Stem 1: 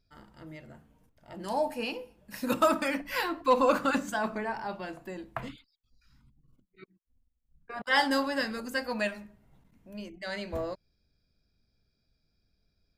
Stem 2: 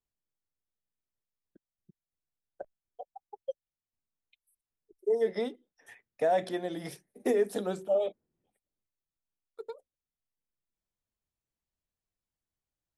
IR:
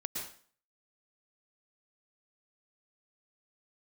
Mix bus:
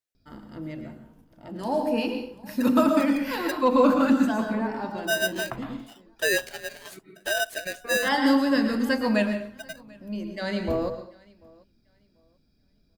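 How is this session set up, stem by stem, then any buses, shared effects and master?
+2.0 dB, 0.15 s, send -3.5 dB, echo send -22.5 dB, graphic EQ 250/2000/8000 Hz +8/-3/-5 dB; auto duck -10 dB, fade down 0.25 s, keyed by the second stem
+2.0 dB, 0.00 s, no send, no echo send, steep high-pass 410 Hz 96 dB/oct; polarity switched at an audio rate 1100 Hz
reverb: on, RT60 0.45 s, pre-delay 0.102 s
echo: feedback echo 0.74 s, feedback 23%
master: dry

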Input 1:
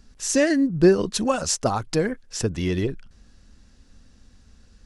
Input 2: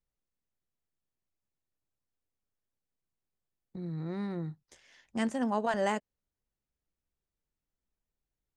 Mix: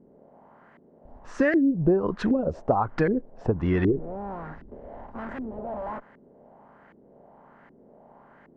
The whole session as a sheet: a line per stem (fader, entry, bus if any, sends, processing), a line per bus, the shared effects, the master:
+2.5 dB, 1.05 s, no send, dry
0.0 dB, 0.00 s, no send, per-bin compression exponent 0.4; tube stage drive 35 dB, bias 0.75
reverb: off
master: LFO low-pass saw up 1.3 Hz 320–1900 Hz; compressor 5:1, threshold -19 dBFS, peak gain reduction 11.5 dB

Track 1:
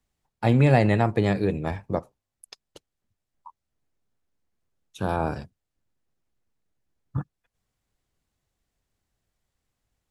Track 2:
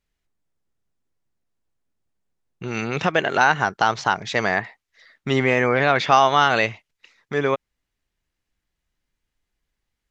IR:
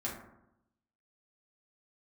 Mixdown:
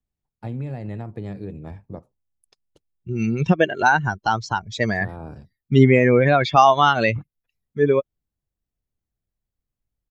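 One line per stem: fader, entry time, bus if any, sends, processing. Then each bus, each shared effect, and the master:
-15.0 dB, 0.00 s, no send, compressor 6:1, threshold -20 dBFS, peak gain reduction 7.5 dB
+2.0 dB, 0.45 s, no send, per-bin expansion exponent 2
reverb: off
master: low shelf 450 Hz +11 dB

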